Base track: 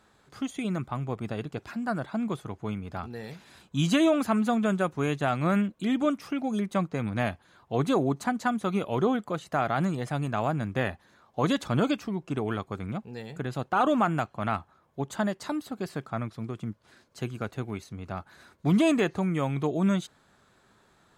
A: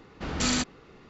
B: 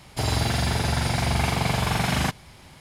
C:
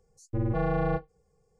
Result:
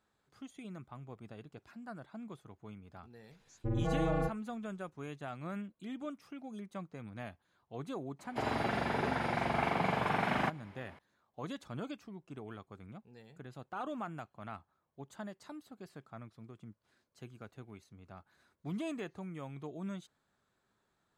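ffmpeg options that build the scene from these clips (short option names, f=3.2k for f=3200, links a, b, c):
-filter_complex "[0:a]volume=-16.5dB[a];[3:a]aresample=16000,aresample=44100[b];[2:a]acrossover=split=190 2500:gain=0.1 1 0.0891[c][d][e];[c][d][e]amix=inputs=3:normalize=0[f];[b]atrim=end=1.59,asetpts=PTS-STARTPTS,volume=-5.5dB,afade=t=in:d=0.004:c=hsin,afade=t=out:st=1.586:d=0.004:c=hsin,adelay=3310[g];[f]atrim=end=2.8,asetpts=PTS-STARTPTS,volume=-4.5dB,afade=t=in:d=0.004:c=hsin,afade=t=out:st=2.796:d=0.004:c=hsin,adelay=8190[h];[a][g][h]amix=inputs=3:normalize=0"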